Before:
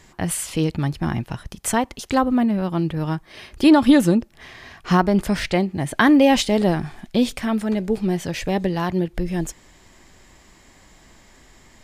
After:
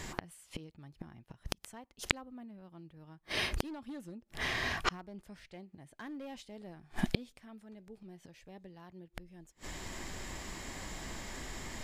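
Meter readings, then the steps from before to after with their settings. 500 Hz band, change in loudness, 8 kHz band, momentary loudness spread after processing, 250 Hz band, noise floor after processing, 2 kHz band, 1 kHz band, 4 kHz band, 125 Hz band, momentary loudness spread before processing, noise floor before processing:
-23.5 dB, -19.5 dB, -15.5 dB, 18 LU, -26.0 dB, -69 dBFS, -11.5 dB, -20.0 dB, -11.0 dB, -20.5 dB, 11 LU, -52 dBFS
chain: hard clip -9.5 dBFS, distortion -18 dB; flipped gate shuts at -21 dBFS, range -37 dB; gain +7 dB

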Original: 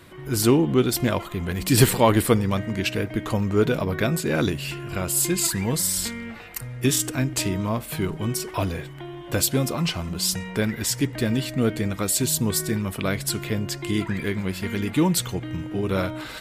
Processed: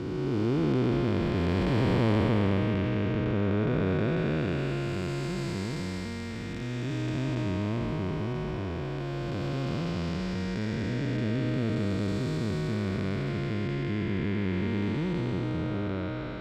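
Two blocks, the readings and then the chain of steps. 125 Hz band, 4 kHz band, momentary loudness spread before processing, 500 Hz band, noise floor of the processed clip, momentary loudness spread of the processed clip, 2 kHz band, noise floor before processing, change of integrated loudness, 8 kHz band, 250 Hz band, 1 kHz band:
-3.0 dB, -12.0 dB, 10 LU, -6.0 dB, -34 dBFS, 7 LU, -6.5 dB, -38 dBFS, -6.0 dB, -27.0 dB, -4.0 dB, -7.5 dB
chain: time blur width 0.889 s; air absorption 200 m

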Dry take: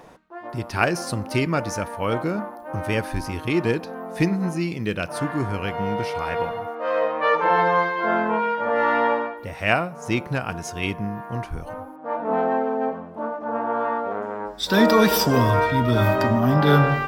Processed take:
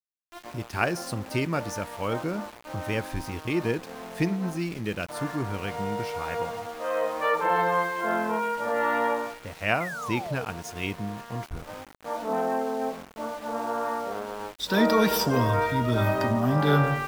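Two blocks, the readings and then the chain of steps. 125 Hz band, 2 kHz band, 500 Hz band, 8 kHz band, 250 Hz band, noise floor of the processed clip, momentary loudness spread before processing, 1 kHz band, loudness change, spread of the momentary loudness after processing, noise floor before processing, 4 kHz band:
-5.0 dB, -5.0 dB, -5.0 dB, -4.0 dB, -5.0 dB, -48 dBFS, 12 LU, -5.0 dB, -5.0 dB, 13 LU, -39 dBFS, -4.5 dB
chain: painted sound fall, 9.8–10.45, 430–2200 Hz -30 dBFS; sample gate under -34 dBFS; gain -5 dB

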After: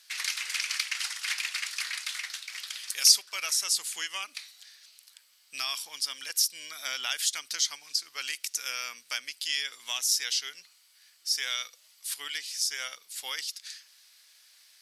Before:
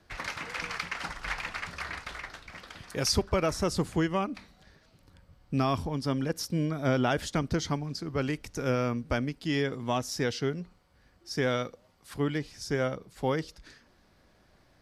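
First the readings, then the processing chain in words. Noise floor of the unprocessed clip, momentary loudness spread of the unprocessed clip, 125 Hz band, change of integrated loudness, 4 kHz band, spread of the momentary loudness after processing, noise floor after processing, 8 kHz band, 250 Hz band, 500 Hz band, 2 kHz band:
-63 dBFS, 11 LU, under -40 dB, +2.0 dB, +10.0 dB, 12 LU, -62 dBFS, +12.5 dB, under -30 dB, -24.0 dB, +1.5 dB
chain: Chebyshev high-pass 2900 Hz, order 2; bell 11000 Hz +12.5 dB 1.9 oct; in parallel at +2 dB: compressor, threshold -40 dBFS, peak gain reduction 21.5 dB; on the sum: gain +1.5 dB

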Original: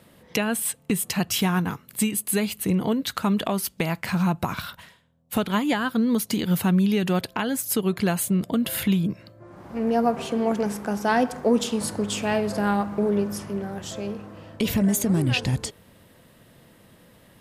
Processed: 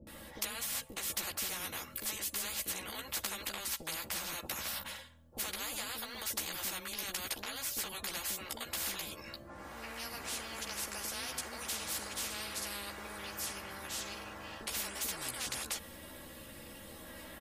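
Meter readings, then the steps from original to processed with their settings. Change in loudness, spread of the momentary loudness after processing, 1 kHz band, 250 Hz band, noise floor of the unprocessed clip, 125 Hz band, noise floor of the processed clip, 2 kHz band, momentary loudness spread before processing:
-13.5 dB, 12 LU, -15.5 dB, -28.0 dB, -55 dBFS, -27.0 dB, -51 dBFS, -10.0 dB, 9 LU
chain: high shelf 8400 Hz +4 dB; comb 3.6 ms, depth 71%; bands offset in time lows, highs 70 ms, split 440 Hz; chorus voices 6, 0.47 Hz, delay 14 ms, depth 1.6 ms; spectral compressor 10:1; gain -5.5 dB

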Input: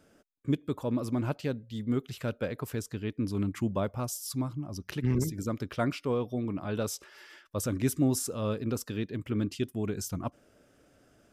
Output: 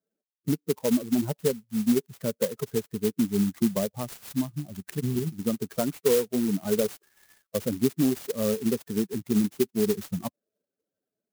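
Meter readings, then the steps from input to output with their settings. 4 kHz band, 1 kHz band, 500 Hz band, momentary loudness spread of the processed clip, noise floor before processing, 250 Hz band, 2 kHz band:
+4.0 dB, -1.5 dB, +7.0 dB, 9 LU, -64 dBFS, +5.5 dB, 0.0 dB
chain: per-bin expansion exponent 2; compressor 3:1, threshold -43 dBFS, peak gain reduction 14.5 dB; HPF 150 Hz 12 dB/oct; small resonant body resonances 210/410 Hz, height 18 dB, ringing for 20 ms; clock jitter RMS 0.1 ms; gain +4 dB

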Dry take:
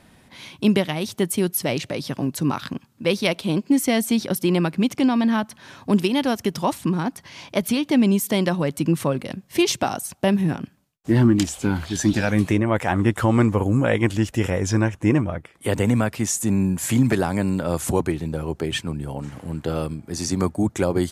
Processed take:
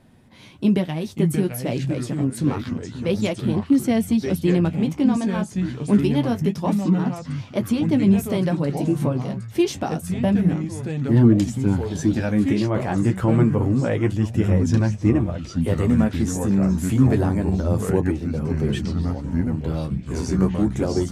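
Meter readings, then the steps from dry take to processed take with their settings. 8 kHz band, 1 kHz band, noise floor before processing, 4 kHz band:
-8.0 dB, -4.0 dB, -55 dBFS, -7.5 dB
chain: echoes that change speed 0.381 s, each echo -4 st, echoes 3, each echo -6 dB; tilt shelf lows +5 dB, about 660 Hz; flange 0.27 Hz, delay 7.6 ms, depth 8.9 ms, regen -32%

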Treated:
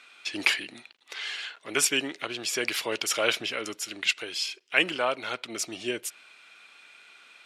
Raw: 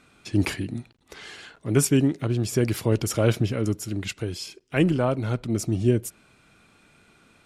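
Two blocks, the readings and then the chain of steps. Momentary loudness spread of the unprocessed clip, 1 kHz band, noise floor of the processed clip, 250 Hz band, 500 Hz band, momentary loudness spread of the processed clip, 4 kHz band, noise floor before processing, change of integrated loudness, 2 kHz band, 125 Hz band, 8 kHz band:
15 LU, +1.5 dB, -57 dBFS, -14.0 dB, -6.5 dB, 10 LU, +8.5 dB, -60 dBFS, -3.5 dB, +7.5 dB, -27.5 dB, +1.5 dB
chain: HPF 520 Hz 12 dB/oct; bell 2900 Hz +13.5 dB 2.3 oct; gain -3.5 dB

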